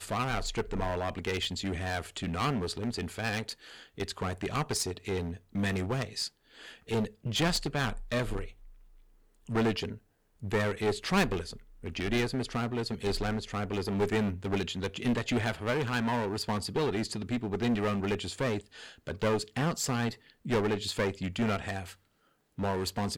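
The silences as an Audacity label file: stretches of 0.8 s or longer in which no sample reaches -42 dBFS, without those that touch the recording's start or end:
8.510000	9.490000	silence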